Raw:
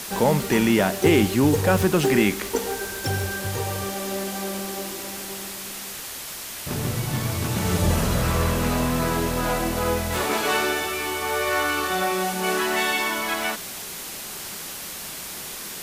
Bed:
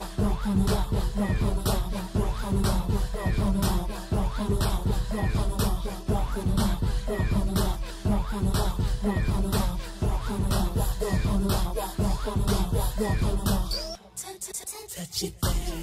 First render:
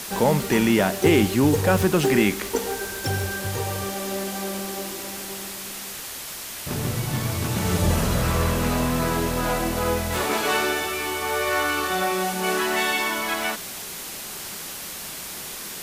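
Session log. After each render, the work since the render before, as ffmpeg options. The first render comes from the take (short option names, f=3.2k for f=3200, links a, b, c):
-af anull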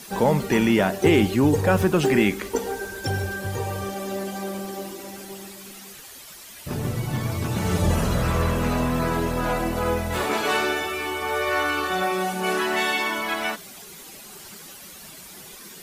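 -af "afftdn=nr=11:nf=-35"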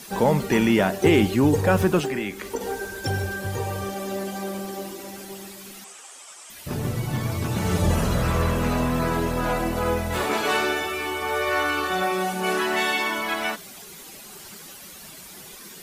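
-filter_complex "[0:a]asettb=1/sr,asplit=3[a][b][c];[a]atrim=end=1.994[d];[b]atrim=start=1.99:end=2.61,asetpts=PTS-STARTPTS,afade=t=in:d=0.004:c=qsin,afade=t=out:st=0.616:d=0.004:c=qsin,acrossover=split=82|370[e][f][g];[e]acompressor=threshold=-51dB:ratio=4[h];[f]acompressor=threshold=-33dB:ratio=4[i];[g]acompressor=threshold=-29dB:ratio=4[j];[h][i][j]amix=inputs=3:normalize=0[k];[c]atrim=start=2.606[l];[d][k]acrossfade=d=0.004:c1=hsin:c2=qsin[m];[m][l]acrossfade=d=0.004:c1=qsin:c2=hsin,asettb=1/sr,asplit=3[n][o][p];[n]atrim=end=5.844[q];[o]atrim=start=5.84:end=6.5,asetpts=PTS-STARTPTS,afade=t=in:d=0.004:c=qsin,afade=t=out:st=0.656:d=0.004:c=qsin,highpass=490,equalizer=f=770:t=q:w=4:g=4,equalizer=f=1.2k:t=q:w=4:g=4,equalizer=f=1.8k:t=q:w=4:g=-4,equalizer=f=4.2k:t=q:w=4:g=-8,equalizer=f=8.1k:t=q:w=4:g=8,lowpass=f=8.9k:w=0.5412,lowpass=f=8.9k:w=1.3066[r];[p]atrim=start=6.496[s];[q][r]acrossfade=d=0.004:c1=hsin:c2=qsin[t];[t][s]acrossfade=d=0.004:c1=qsin:c2=hsin"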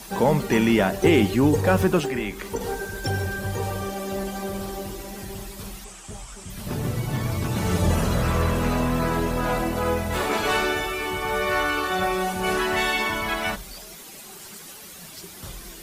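-filter_complex "[1:a]volume=-13.5dB[a];[0:a][a]amix=inputs=2:normalize=0"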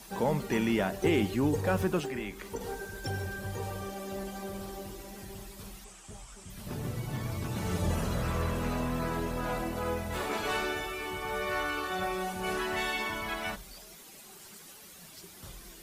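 -af "volume=-9dB"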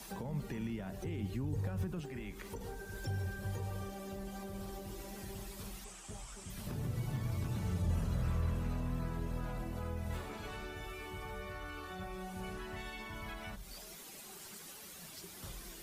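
-filter_complex "[0:a]alimiter=limit=-22dB:level=0:latency=1:release=24,acrossover=split=170[a][b];[b]acompressor=threshold=-44dB:ratio=10[c];[a][c]amix=inputs=2:normalize=0"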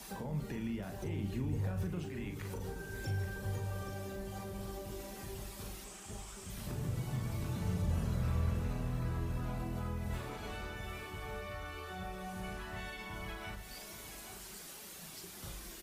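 -filter_complex "[0:a]asplit=2[a][b];[b]adelay=39,volume=-7dB[c];[a][c]amix=inputs=2:normalize=0,aecho=1:1:825:0.316"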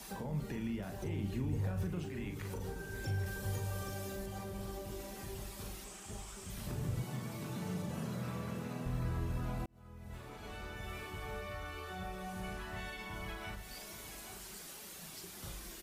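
-filter_complex "[0:a]asettb=1/sr,asplit=3[a][b][c];[a]atrim=end=3.264[d];[b]atrim=start=3.26:end=4.26,asetpts=PTS-STARTPTS,afade=t=in:d=0.004:c=qsin,afade=t=out:st=0.996:d=0.004:c=qsin,highshelf=f=3.6k:g=7[e];[c]atrim=start=4.256[f];[d][e]acrossfade=d=0.004:c1=hsin:c2=qsin[g];[g][f]acrossfade=d=0.004:c1=qsin:c2=hsin,asettb=1/sr,asplit=3[h][i][j];[h]atrim=end=7.044[k];[i]atrim=start=7.04:end=8.86,asetpts=PTS-STARTPTS,afade=t=in:d=0.004:c=qsin,afade=t=out:st=1.816:d=0.004:c=qsin,highpass=f=140:w=0.5412,highpass=f=140:w=1.3066[l];[j]atrim=start=8.856[m];[k][l]acrossfade=d=0.004:c1=hsin:c2=qsin[n];[n][m]acrossfade=d=0.004:c1=qsin:c2=hsin,asplit=2[o][p];[o]atrim=end=9.66,asetpts=PTS-STARTPTS,afade=t=out:st=9.656:d=0.004:c=hsin[q];[p]atrim=start=9.66,asetpts=PTS-STARTPTS,afade=t=in:d=1.33[r];[q][r]concat=n=2:v=0:a=1"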